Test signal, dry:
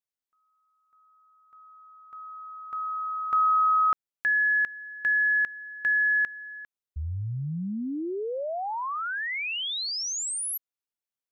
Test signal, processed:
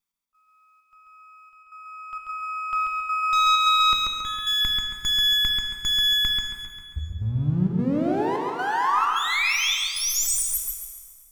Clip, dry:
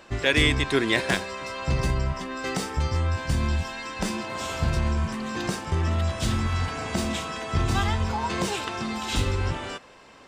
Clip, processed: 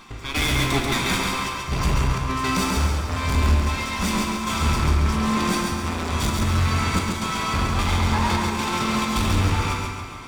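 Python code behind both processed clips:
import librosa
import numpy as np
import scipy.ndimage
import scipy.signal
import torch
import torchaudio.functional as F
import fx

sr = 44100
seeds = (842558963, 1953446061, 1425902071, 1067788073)

p1 = fx.lower_of_two(x, sr, delay_ms=0.86)
p2 = fx.rider(p1, sr, range_db=4, speed_s=2.0)
p3 = p1 + (p2 * 10.0 ** (2.0 / 20.0))
p4 = fx.step_gate(p3, sr, bpm=131, pattern='x..xxxx.xxxx', floor_db=-12.0, edge_ms=4.5)
p5 = np.clip(p4, -10.0 ** (-20.0 / 20.0), 10.0 ** (-20.0 / 20.0))
p6 = p5 + fx.echo_feedback(p5, sr, ms=137, feedback_pct=37, wet_db=-3.5, dry=0)
p7 = fx.rev_plate(p6, sr, seeds[0], rt60_s=2.0, hf_ratio=0.8, predelay_ms=0, drr_db=3.5)
y = p7 * 10.0 ** (-1.0 / 20.0)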